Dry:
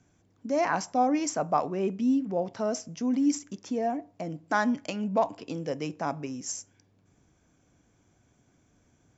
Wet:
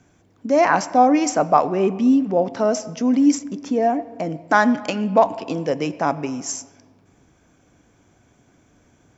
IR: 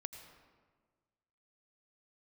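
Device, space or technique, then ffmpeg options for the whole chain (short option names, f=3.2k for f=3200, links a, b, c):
filtered reverb send: -filter_complex "[0:a]asplit=2[a][b];[b]highpass=200,lowpass=4.3k[c];[1:a]atrim=start_sample=2205[d];[c][d]afir=irnorm=-1:irlink=0,volume=-4dB[e];[a][e]amix=inputs=2:normalize=0,asplit=3[f][g][h];[f]afade=t=out:st=3.39:d=0.02[i];[g]adynamicequalizer=threshold=0.00316:dfrequency=1700:dqfactor=0.7:tfrequency=1700:tqfactor=0.7:attack=5:release=100:ratio=0.375:range=3:mode=cutabove:tftype=highshelf,afade=t=in:st=3.39:d=0.02,afade=t=out:st=3.8:d=0.02[j];[h]afade=t=in:st=3.8:d=0.02[k];[i][j][k]amix=inputs=3:normalize=0,volume=7.5dB"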